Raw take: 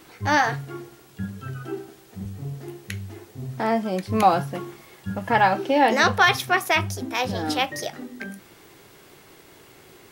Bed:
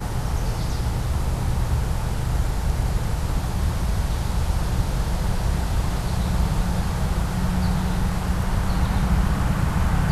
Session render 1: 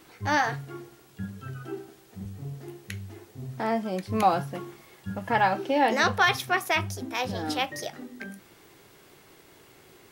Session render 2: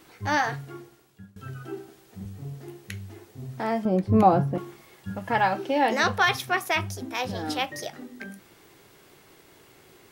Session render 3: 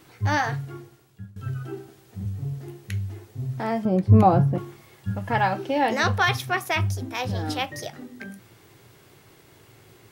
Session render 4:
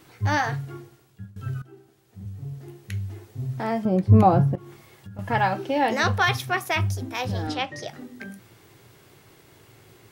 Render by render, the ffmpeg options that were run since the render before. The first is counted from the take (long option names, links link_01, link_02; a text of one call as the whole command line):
ffmpeg -i in.wav -af "volume=-4.5dB" out.wav
ffmpeg -i in.wav -filter_complex "[0:a]asettb=1/sr,asplit=3[link_01][link_02][link_03];[link_01]atrim=end=3.854[link_04];[link_02]atrim=start=3.85:end=4.58,asetpts=PTS-STARTPTS,afade=type=in:duration=0.004:curve=qsin,afade=type=out:start_time=0.726:duration=0.004:curve=qsin,tiltshelf=frequency=1100:gain=10[link_05];[link_03]atrim=start=4.576[link_06];[link_04][link_05]acrossfade=duration=0.004:curve1=hsin:curve2=qsin[link_07];[link_07][link_06]acrossfade=duration=0.004:curve1=qsin:curve2=hsin,asplit=2[link_08][link_09];[link_08]atrim=end=1.36,asetpts=PTS-STARTPTS,afade=type=out:start_time=0.68:duration=0.68:silence=0.0944061[link_10];[link_09]atrim=start=1.36,asetpts=PTS-STARTPTS,afade=type=in:duration=0.004:curve=hsin:silence=0.0944061[link_11];[link_10][link_11]concat=n=2:v=0:a=1" out.wav
ffmpeg -i in.wav -af "equalizer=frequency=110:width=2:gain=12.5" out.wav
ffmpeg -i in.wav -filter_complex "[0:a]asettb=1/sr,asplit=3[link_01][link_02][link_03];[link_01]atrim=end=4.554[link_04];[link_02]atrim=start=4.55:end=5.19,asetpts=PTS-STARTPTS,afade=type=in:duration=0.004:curve=qsin,afade=type=out:start_time=0.636:duration=0.004:curve=qsin,acompressor=threshold=-38dB:ratio=6:attack=3.2:release=140:knee=1:detection=peak[link_05];[link_03]atrim=start=5.186[link_06];[link_04][link_05]acrossfade=duration=0.004:curve1=hsin:curve2=qsin[link_07];[link_07][link_06]acrossfade=duration=0.004:curve1=qsin:curve2=hsin,asettb=1/sr,asplit=3[link_08][link_09][link_10];[link_08]atrim=end=7.474[link_11];[link_09]atrim=start=7.47:end=7.88,asetpts=PTS-STARTPTS,afade=type=in:duration=0.004:curve=qsin,afade=type=out:start_time=0.406:duration=0.004:curve=qsin,highpass=110,lowpass=6000[link_12];[link_10]atrim=start=7.876[link_13];[link_11][link_12]acrossfade=duration=0.004:curve1=hsin:curve2=qsin[link_14];[link_14][link_13]acrossfade=duration=0.004:curve1=qsin:curve2=hsin,asplit=2[link_15][link_16];[link_15]atrim=end=1.62,asetpts=PTS-STARTPTS,afade=type=out:start_time=1.616:duration=0.004:curve=hsin:silence=0.158489[link_17];[link_16]atrim=start=1.62,asetpts=PTS-STARTPTS,afade=type=in:duration=1.66:silence=0.158489[link_18];[link_17][link_18]concat=n=2:v=0:a=1" out.wav